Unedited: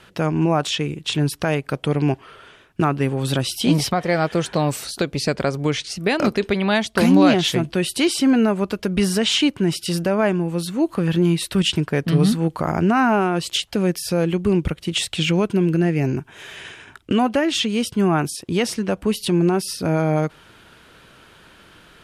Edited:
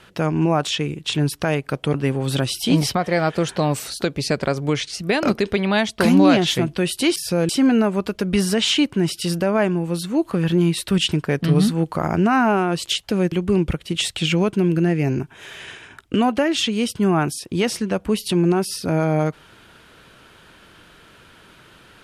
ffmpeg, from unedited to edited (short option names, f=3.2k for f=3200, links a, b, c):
-filter_complex "[0:a]asplit=5[a][b][c][d][e];[a]atrim=end=1.942[f];[b]atrim=start=2.908:end=8.132[g];[c]atrim=start=13.958:end=14.292[h];[d]atrim=start=8.128:end=13.962[i];[e]atrim=start=14.288[j];[f][g]acrossfade=d=0.004:c1=hsin:c2=hsin[k];[k][h]acrossfade=d=0.004:c1=hsin:c2=hsin[l];[l][i]acrossfade=d=0.004:c1=hsin:c2=hsin[m];[m][j]acrossfade=d=0.004:c1=hsin:c2=hsin"